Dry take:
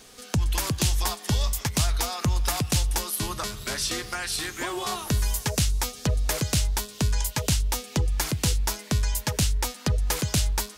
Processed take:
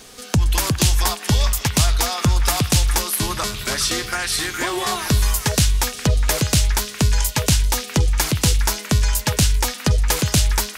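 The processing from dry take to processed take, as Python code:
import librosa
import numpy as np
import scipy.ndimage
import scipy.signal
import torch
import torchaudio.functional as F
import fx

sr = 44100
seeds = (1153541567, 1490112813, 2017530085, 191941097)

y = fx.echo_stepped(x, sr, ms=412, hz=1700.0, octaves=0.7, feedback_pct=70, wet_db=-5.5)
y = y * librosa.db_to_amplitude(7.0)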